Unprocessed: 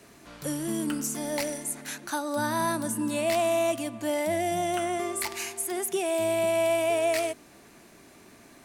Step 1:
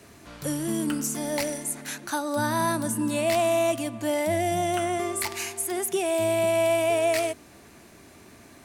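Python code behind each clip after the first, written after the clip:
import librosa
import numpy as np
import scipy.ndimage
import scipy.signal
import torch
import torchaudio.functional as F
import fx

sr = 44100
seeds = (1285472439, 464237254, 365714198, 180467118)

y = fx.peak_eq(x, sr, hz=82.0, db=8.5, octaves=0.91)
y = y * 10.0 ** (2.0 / 20.0)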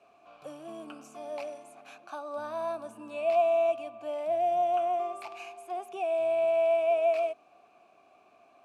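y = fx.vowel_filter(x, sr, vowel='a')
y = y * 10.0 ** (2.5 / 20.0)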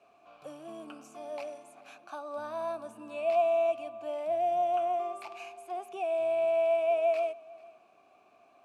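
y = x + 10.0 ** (-23.0 / 20.0) * np.pad(x, (int(441 * sr / 1000.0), 0))[:len(x)]
y = y * 10.0 ** (-1.5 / 20.0)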